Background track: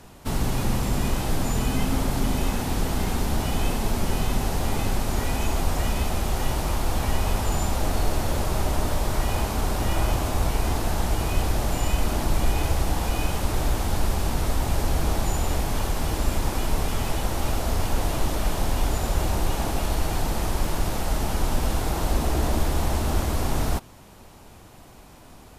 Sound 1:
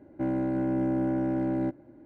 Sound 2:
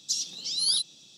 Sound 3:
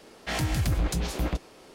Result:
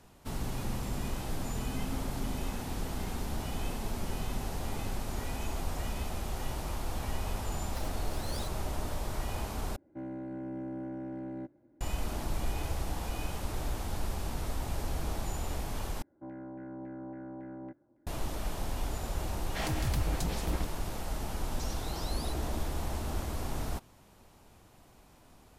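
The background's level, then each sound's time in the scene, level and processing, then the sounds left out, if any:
background track -11 dB
7.66 s: add 2 -17 dB + sliding maximum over 5 samples
9.76 s: replace with 1 -12 dB
16.02 s: replace with 1 -16.5 dB + LFO low-pass saw down 3.6 Hz 920–2000 Hz
19.28 s: add 3 -6.5 dB
21.51 s: add 2 -6.5 dB + compression, threshold -38 dBFS

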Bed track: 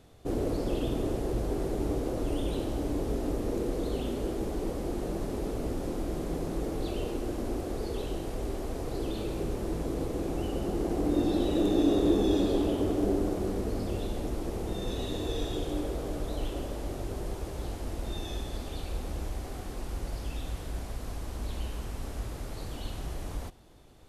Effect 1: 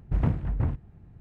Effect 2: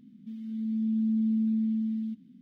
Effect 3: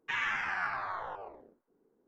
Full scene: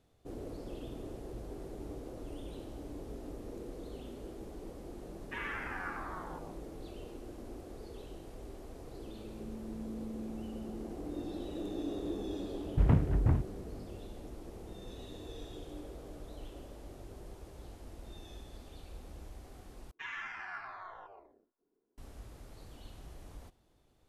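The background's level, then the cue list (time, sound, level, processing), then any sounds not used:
bed track -13.5 dB
5.23 s: add 3 -5.5 dB + low-pass 2.2 kHz 6 dB/octave
8.80 s: add 2 -16.5 dB
12.66 s: add 1 -1 dB
19.91 s: replace with 3 -10 dB + comb 2.9 ms, depth 33%

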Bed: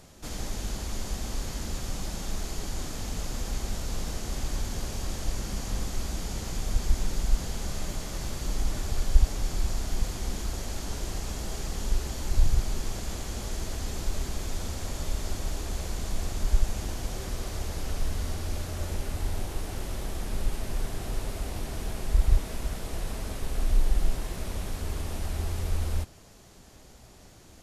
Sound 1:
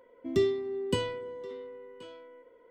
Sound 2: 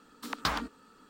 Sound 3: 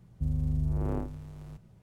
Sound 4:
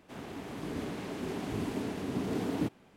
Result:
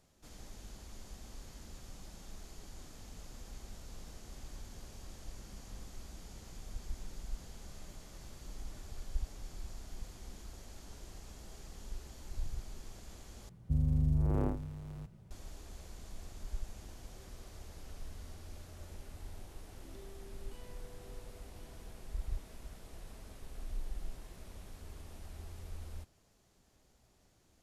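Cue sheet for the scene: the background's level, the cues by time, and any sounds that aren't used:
bed -17 dB
13.49 s: replace with 3 -0.5 dB
19.59 s: add 1 -16.5 dB + compression, threshold -38 dBFS
not used: 2, 4

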